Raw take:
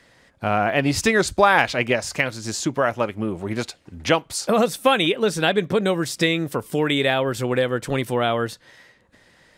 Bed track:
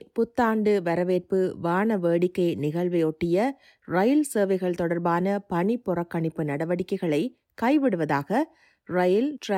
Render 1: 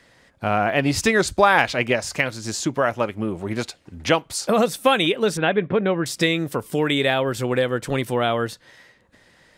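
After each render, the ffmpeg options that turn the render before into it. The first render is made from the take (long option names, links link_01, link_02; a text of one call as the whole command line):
ffmpeg -i in.wav -filter_complex "[0:a]asettb=1/sr,asplit=3[link_01][link_02][link_03];[link_01]atrim=end=5.374[link_04];[link_02]atrim=start=5.37:end=6.06,asetpts=PTS-STARTPTS,afade=type=in:duration=0.004:curve=qsin,afade=type=out:start_time=0.686:duration=0.004:curve=qsin,lowpass=frequency=2800:width=0.5412,lowpass=frequency=2800:width=1.3066[link_05];[link_03]atrim=start=6.056[link_06];[link_04][link_05]acrossfade=duration=0.004:curve1=hsin:curve2=qsin[link_07];[link_07][link_06]acrossfade=duration=0.004:curve1=qsin:curve2=hsin" out.wav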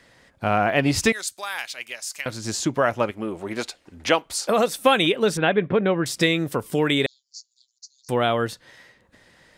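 ffmpeg -i in.wav -filter_complex "[0:a]asettb=1/sr,asplit=3[link_01][link_02][link_03];[link_01]atrim=end=1.124[link_04];[link_02]atrim=start=1.12:end=2.26,asetpts=PTS-STARTPTS,afade=type=in:duration=0.004:curve=qsin,afade=type=out:start_time=1.136:duration=0.004:curve=qsin,aderivative[link_05];[link_03]atrim=start=2.256[link_06];[link_04][link_05]acrossfade=duration=0.004:curve1=hsin:curve2=qsin[link_07];[link_07][link_06]acrossfade=duration=0.004:curve1=qsin:curve2=hsin,asettb=1/sr,asplit=3[link_08][link_09][link_10];[link_08]atrim=end=3.114[link_11];[link_09]atrim=start=3.11:end=4.79,asetpts=PTS-STARTPTS,afade=type=in:duration=0.004:curve=qsin,afade=type=out:start_time=1.676:duration=0.004:curve=qsin,equalizer=frequency=120:width_type=o:width=1.5:gain=-12[link_12];[link_10]atrim=start=4.786[link_13];[link_11][link_12]acrossfade=duration=0.004:curve1=hsin:curve2=qsin[link_14];[link_14][link_13]acrossfade=duration=0.004:curve1=qsin:curve2=hsin,asettb=1/sr,asplit=3[link_15][link_16][link_17];[link_15]atrim=end=7.064[link_18];[link_16]atrim=start=7.06:end=8.09,asetpts=PTS-STARTPTS,afade=type=in:duration=0.004:curve=qsin,afade=type=out:start_time=1.026:duration=0.004:curve=qsin,asuperpass=centerf=5500:order=12:qfactor=2.1[link_19];[link_17]atrim=start=8.086[link_20];[link_18][link_19]acrossfade=duration=0.004:curve1=hsin:curve2=qsin[link_21];[link_21][link_20]acrossfade=duration=0.004:curve1=qsin:curve2=hsin" out.wav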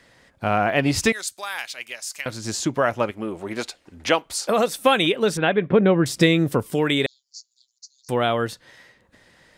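ffmpeg -i in.wav -filter_complex "[0:a]asettb=1/sr,asplit=3[link_01][link_02][link_03];[link_01]atrim=end=5.734[link_04];[link_02]atrim=start=5.73:end=6.63,asetpts=PTS-STARTPTS,afade=type=in:duration=0.004:curve=qsin,afade=type=out:start_time=0.896:duration=0.004:curve=qsin,lowshelf=frequency=470:gain=7[link_05];[link_03]atrim=start=6.626[link_06];[link_04][link_05]acrossfade=duration=0.004:curve1=hsin:curve2=qsin[link_07];[link_07][link_06]acrossfade=duration=0.004:curve1=qsin:curve2=hsin" out.wav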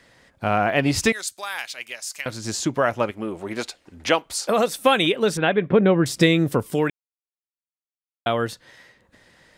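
ffmpeg -i in.wav -filter_complex "[0:a]asplit=3[link_01][link_02][link_03];[link_01]atrim=end=6.9,asetpts=PTS-STARTPTS,afade=type=out:start_time=6.896:duration=0.004:curve=hsin[link_04];[link_02]atrim=start=6.9:end=8.26,asetpts=PTS-STARTPTS,volume=0[link_05];[link_03]atrim=start=8.26,asetpts=PTS-STARTPTS,afade=type=in:duration=0.004:curve=hsin[link_06];[link_04][link_05][link_06]concat=n=3:v=0:a=1" out.wav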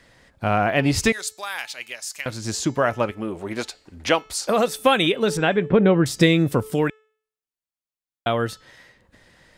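ffmpeg -i in.wav -af "lowshelf=frequency=77:gain=9,bandreject=frequency=433.7:width_type=h:width=4,bandreject=frequency=867.4:width_type=h:width=4,bandreject=frequency=1301.1:width_type=h:width=4,bandreject=frequency=1734.8:width_type=h:width=4,bandreject=frequency=2168.5:width_type=h:width=4,bandreject=frequency=2602.2:width_type=h:width=4,bandreject=frequency=3035.9:width_type=h:width=4,bandreject=frequency=3469.6:width_type=h:width=4,bandreject=frequency=3903.3:width_type=h:width=4,bandreject=frequency=4337:width_type=h:width=4,bandreject=frequency=4770.7:width_type=h:width=4,bandreject=frequency=5204.4:width_type=h:width=4,bandreject=frequency=5638.1:width_type=h:width=4,bandreject=frequency=6071.8:width_type=h:width=4,bandreject=frequency=6505.5:width_type=h:width=4,bandreject=frequency=6939.2:width_type=h:width=4,bandreject=frequency=7372.9:width_type=h:width=4,bandreject=frequency=7806.6:width_type=h:width=4" out.wav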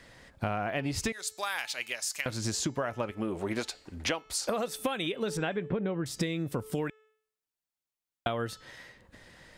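ffmpeg -i in.wav -af "acompressor=threshold=-28dB:ratio=12" out.wav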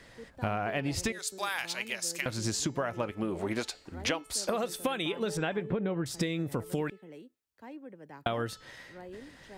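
ffmpeg -i in.wav -i bed.wav -filter_complex "[1:a]volume=-24.5dB[link_01];[0:a][link_01]amix=inputs=2:normalize=0" out.wav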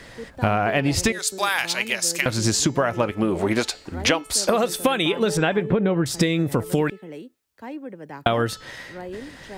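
ffmpeg -i in.wav -af "volume=11dB" out.wav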